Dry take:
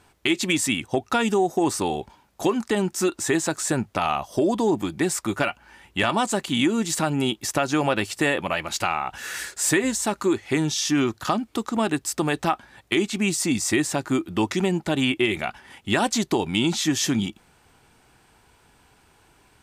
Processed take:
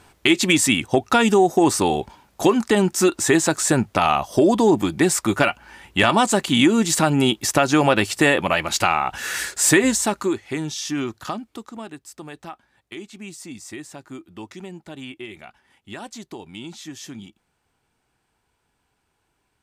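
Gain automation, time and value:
9.94 s +5.5 dB
10.49 s -4 dB
11.23 s -4 dB
11.95 s -14 dB

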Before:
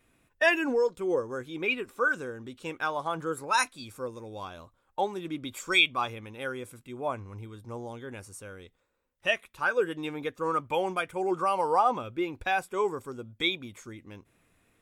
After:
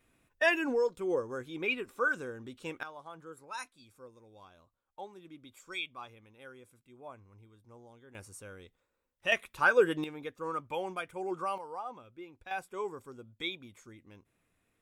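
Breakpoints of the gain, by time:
-3.5 dB
from 2.83 s -16 dB
from 8.15 s -4 dB
from 9.32 s +2.5 dB
from 10.04 s -7.5 dB
from 11.58 s -17 dB
from 12.51 s -9 dB

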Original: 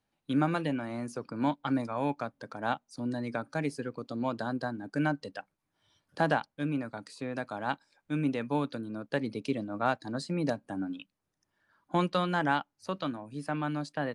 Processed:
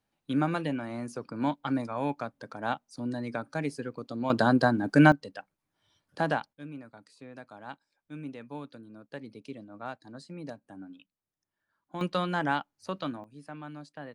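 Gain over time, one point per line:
0 dB
from 4.3 s +11 dB
from 5.12 s -1 dB
from 6.53 s -10.5 dB
from 12.01 s -0.5 dB
from 13.24 s -10 dB

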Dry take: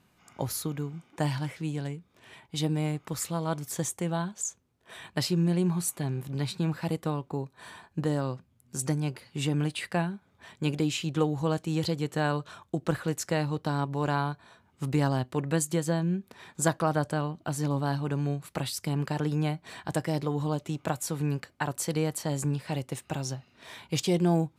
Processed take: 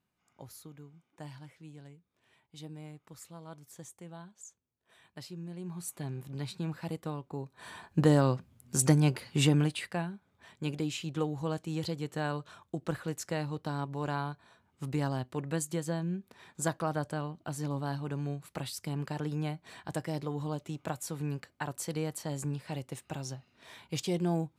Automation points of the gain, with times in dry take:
5.55 s -17 dB
5.98 s -7 dB
7.31 s -7 dB
8.03 s +5 dB
9.42 s +5 dB
9.95 s -6 dB

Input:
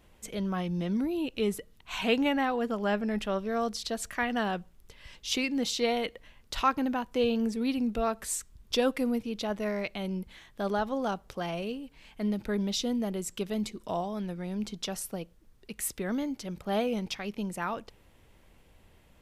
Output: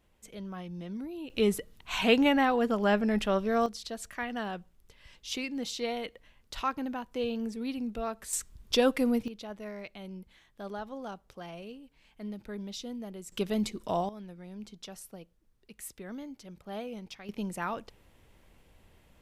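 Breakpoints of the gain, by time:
-9 dB
from 1.3 s +3 dB
from 3.66 s -5.5 dB
from 8.33 s +2 dB
from 9.28 s -9.5 dB
from 13.32 s +2 dB
from 14.09 s -10 dB
from 17.29 s -1 dB

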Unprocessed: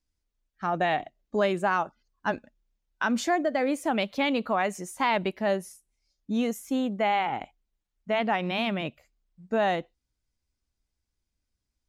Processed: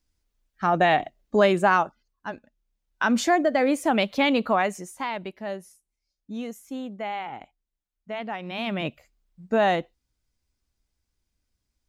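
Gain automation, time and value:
1.75 s +6 dB
2.31 s -6.5 dB
3.11 s +4.5 dB
4.54 s +4.5 dB
5.15 s -6.5 dB
8.44 s -6.5 dB
8.87 s +4 dB

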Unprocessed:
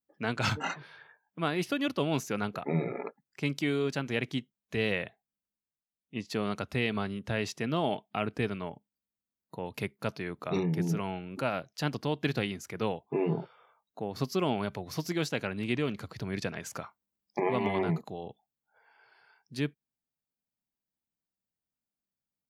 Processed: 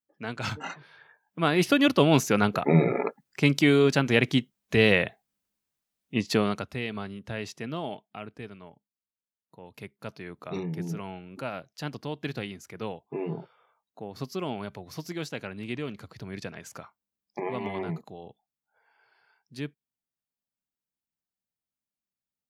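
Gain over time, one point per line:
0.85 s -3 dB
1.68 s +9.5 dB
6.34 s +9.5 dB
6.75 s -3 dB
7.67 s -3 dB
8.38 s -10 dB
9.57 s -10 dB
10.3 s -3.5 dB

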